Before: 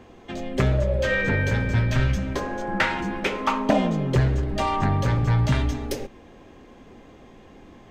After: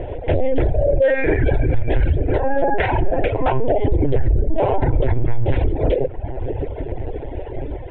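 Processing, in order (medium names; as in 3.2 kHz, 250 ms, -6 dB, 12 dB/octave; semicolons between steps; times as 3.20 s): 4.31–4.80 s: tilt EQ -2 dB/octave; filtered feedback delay 558 ms, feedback 72%, low-pass 1 kHz, level -23 dB; LPC vocoder at 8 kHz pitch kept; low-pass 1.5 kHz 12 dB/octave; static phaser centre 490 Hz, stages 4; compression 4:1, threshold -33 dBFS, peak gain reduction 15.5 dB; reverb removal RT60 1.1 s; loudness maximiser +31.5 dB; trim -7.5 dB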